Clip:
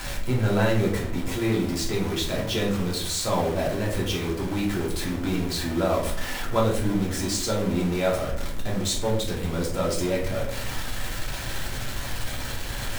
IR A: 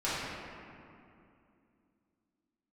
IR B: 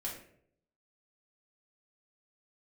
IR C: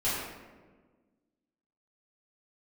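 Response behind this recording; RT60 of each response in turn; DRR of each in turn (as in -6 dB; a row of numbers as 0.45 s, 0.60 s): B; 2.6 s, 0.65 s, 1.4 s; -12.0 dB, -4.0 dB, -12.0 dB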